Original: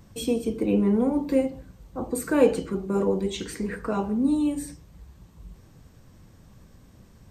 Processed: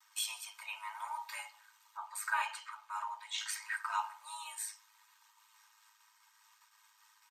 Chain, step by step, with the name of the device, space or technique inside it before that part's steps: ring-modulated robot voice (ring modulator 53 Hz; comb 3.2 ms, depth 89%); expander -49 dBFS; steep high-pass 860 Hz 72 dB/oct; 1.97–3.38 high shelf 4400 Hz -9.5 dB; gain +1 dB

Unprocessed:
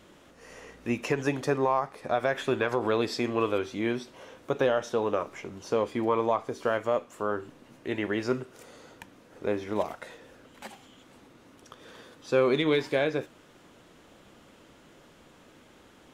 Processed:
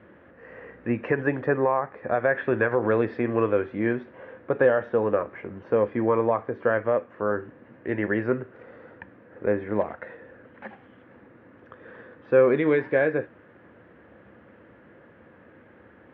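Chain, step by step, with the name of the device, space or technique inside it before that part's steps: bass cabinet (speaker cabinet 73–2200 Hz, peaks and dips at 76 Hz +9 dB, 110 Hz +7 dB, 210 Hz +5 dB, 330 Hz +3 dB, 510 Hz +7 dB, 1700 Hz +9 dB)

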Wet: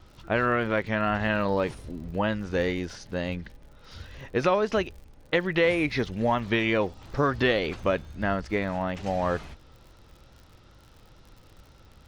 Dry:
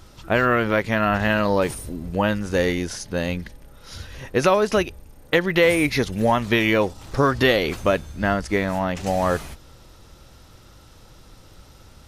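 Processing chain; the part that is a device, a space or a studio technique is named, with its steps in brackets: lo-fi chain (LPF 4400 Hz 12 dB/oct; wow and flutter; crackle 63/s -37 dBFS); gain -5.5 dB

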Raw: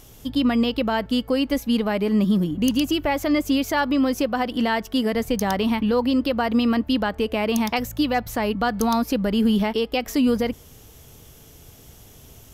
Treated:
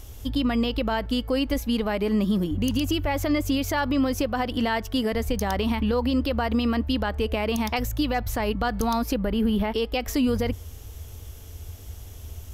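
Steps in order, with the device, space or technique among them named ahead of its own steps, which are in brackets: car stereo with a boomy subwoofer (resonant low shelf 110 Hz +8 dB, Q 3; limiter -15 dBFS, peak gain reduction 6.5 dB); 9.14–9.72 bell 6200 Hz -13 dB 1.2 oct

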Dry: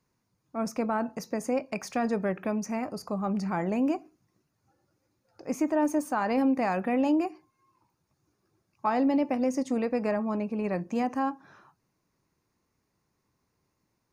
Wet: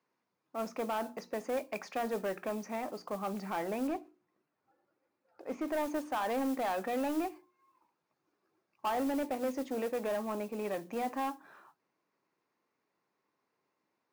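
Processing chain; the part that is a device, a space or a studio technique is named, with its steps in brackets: carbon microphone (BPF 330–3400 Hz; soft clip -26.5 dBFS, distortion -12 dB; modulation noise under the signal 20 dB); notches 60/120/180/240/300/360 Hz; 3.87–5.68 high shelf 4700 Hz -10.5 dB; gain -1 dB

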